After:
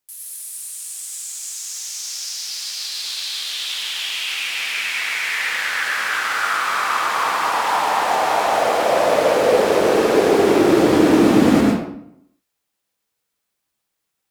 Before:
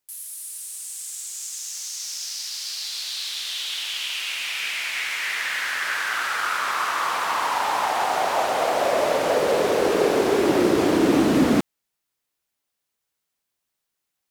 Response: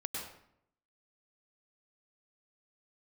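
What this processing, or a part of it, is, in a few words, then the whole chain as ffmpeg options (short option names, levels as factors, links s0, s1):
bathroom: -filter_complex "[1:a]atrim=start_sample=2205[s0];[0:a][s0]afir=irnorm=-1:irlink=0,volume=1.41"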